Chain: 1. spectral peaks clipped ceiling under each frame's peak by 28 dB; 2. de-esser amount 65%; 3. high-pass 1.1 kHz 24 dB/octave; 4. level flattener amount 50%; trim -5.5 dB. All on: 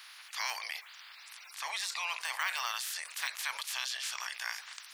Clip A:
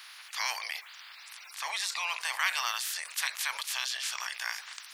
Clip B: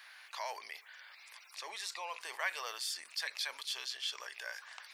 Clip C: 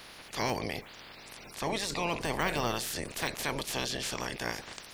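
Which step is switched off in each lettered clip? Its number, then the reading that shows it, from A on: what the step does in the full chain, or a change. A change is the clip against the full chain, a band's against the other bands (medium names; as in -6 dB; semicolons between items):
2, crest factor change +2.0 dB; 1, 500 Hz band +10.5 dB; 3, 500 Hz band +20.5 dB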